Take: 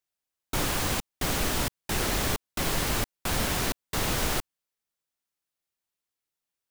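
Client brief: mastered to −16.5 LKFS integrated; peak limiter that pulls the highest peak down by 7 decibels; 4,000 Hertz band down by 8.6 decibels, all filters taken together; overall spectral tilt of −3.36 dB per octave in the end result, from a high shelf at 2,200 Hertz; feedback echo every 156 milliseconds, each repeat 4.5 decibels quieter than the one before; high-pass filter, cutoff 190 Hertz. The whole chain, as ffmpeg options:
ffmpeg -i in.wav -af "highpass=190,highshelf=frequency=2200:gain=-5.5,equalizer=frequency=4000:width_type=o:gain=-6,alimiter=level_in=2dB:limit=-24dB:level=0:latency=1,volume=-2dB,aecho=1:1:156|312|468|624|780|936|1092|1248|1404:0.596|0.357|0.214|0.129|0.0772|0.0463|0.0278|0.0167|0.01,volume=18.5dB" out.wav

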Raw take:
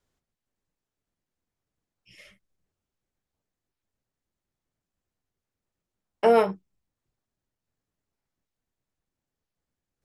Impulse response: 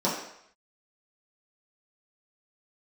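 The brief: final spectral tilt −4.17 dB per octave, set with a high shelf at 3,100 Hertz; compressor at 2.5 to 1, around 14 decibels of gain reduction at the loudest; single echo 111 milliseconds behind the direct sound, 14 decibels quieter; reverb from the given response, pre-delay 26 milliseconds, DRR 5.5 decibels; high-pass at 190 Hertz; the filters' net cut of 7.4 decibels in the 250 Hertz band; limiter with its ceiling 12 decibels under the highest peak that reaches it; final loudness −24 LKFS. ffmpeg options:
-filter_complex "[0:a]highpass=190,equalizer=frequency=250:width_type=o:gain=-6.5,highshelf=frequency=3100:gain=8,acompressor=threshold=-37dB:ratio=2.5,alimiter=level_in=7.5dB:limit=-24dB:level=0:latency=1,volume=-7.5dB,aecho=1:1:111:0.2,asplit=2[link_01][link_02];[1:a]atrim=start_sample=2205,adelay=26[link_03];[link_02][link_03]afir=irnorm=-1:irlink=0,volume=-18dB[link_04];[link_01][link_04]amix=inputs=2:normalize=0,volume=20.5dB"

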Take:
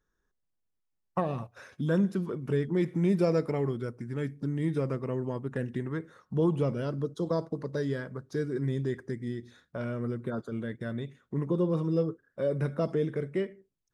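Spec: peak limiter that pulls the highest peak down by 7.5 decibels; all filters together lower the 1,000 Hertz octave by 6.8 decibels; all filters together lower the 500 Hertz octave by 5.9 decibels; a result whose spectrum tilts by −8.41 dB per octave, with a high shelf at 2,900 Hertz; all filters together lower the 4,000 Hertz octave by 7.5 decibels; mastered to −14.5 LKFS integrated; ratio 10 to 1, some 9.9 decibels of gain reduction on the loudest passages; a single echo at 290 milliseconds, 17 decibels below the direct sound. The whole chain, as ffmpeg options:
ffmpeg -i in.wav -af "equalizer=frequency=500:width_type=o:gain=-6,equalizer=frequency=1000:width_type=o:gain=-6,highshelf=frequency=2900:gain=-5.5,equalizer=frequency=4000:width_type=o:gain=-5,acompressor=threshold=-33dB:ratio=10,alimiter=level_in=6.5dB:limit=-24dB:level=0:latency=1,volume=-6.5dB,aecho=1:1:290:0.141,volume=26dB" out.wav

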